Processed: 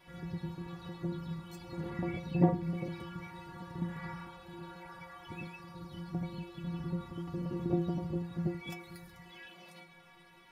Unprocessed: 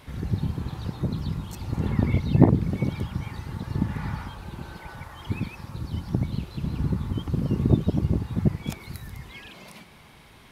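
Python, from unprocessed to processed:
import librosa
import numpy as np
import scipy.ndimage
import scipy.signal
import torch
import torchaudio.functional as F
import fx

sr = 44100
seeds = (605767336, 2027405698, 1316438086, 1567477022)

y = fx.bass_treble(x, sr, bass_db=-7, treble_db=-7)
y = fx.stiff_resonator(y, sr, f0_hz=170.0, decay_s=0.37, stiffness=0.008)
y = F.gain(torch.from_numpy(y), 7.0).numpy()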